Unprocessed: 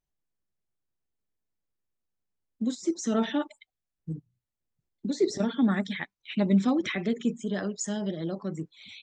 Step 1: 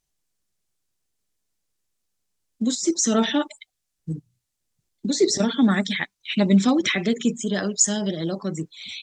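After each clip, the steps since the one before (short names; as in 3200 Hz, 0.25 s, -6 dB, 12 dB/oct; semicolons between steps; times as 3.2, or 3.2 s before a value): bell 7400 Hz +10.5 dB 2.4 oct; gain +5.5 dB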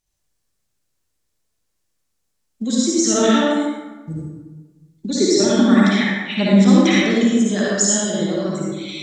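reverb RT60 1.3 s, pre-delay 48 ms, DRR -6 dB; gain -1 dB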